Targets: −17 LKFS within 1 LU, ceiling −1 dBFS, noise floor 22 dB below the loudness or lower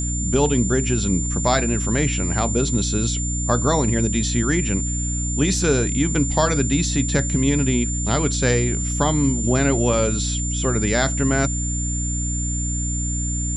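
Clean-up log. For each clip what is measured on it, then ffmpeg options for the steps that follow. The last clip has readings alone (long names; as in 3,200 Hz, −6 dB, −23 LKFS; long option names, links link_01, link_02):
mains hum 60 Hz; hum harmonics up to 300 Hz; level of the hum −22 dBFS; interfering tone 7,200 Hz; level of the tone −26 dBFS; integrated loudness −20.5 LKFS; sample peak −4.5 dBFS; target loudness −17.0 LKFS
→ -af "bandreject=frequency=60:width_type=h:width=4,bandreject=frequency=120:width_type=h:width=4,bandreject=frequency=180:width_type=h:width=4,bandreject=frequency=240:width_type=h:width=4,bandreject=frequency=300:width_type=h:width=4"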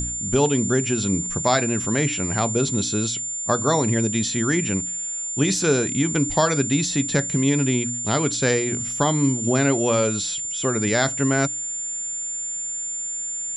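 mains hum none found; interfering tone 7,200 Hz; level of the tone −26 dBFS
→ -af "bandreject=frequency=7200:width=30"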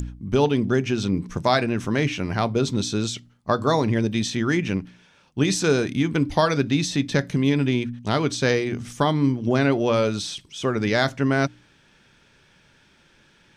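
interfering tone none found; integrated loudness −23.0 LKFS; sample peak −6.0 dBFS; target loudness −17.0 LKFS
→ -af "volume=6dB,alimiter=limit=-1dB:level=0:latency=1"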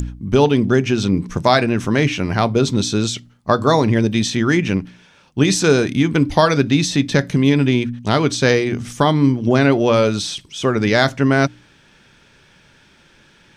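integrated loudness −17.0 LKFS; sample peak −1.0 dBFS; background noise floor −52 dBFS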